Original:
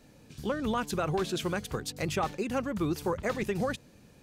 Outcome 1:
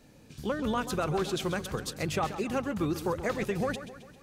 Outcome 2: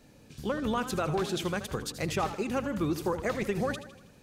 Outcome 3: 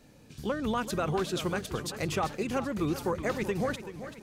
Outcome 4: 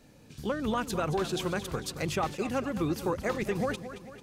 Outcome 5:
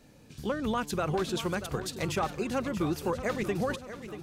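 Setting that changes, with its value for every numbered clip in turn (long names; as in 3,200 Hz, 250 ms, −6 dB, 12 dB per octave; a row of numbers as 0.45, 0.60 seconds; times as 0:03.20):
feedback echo with a swinging delay time, delay time: 133, 80, 385, 222, 637 milliseconds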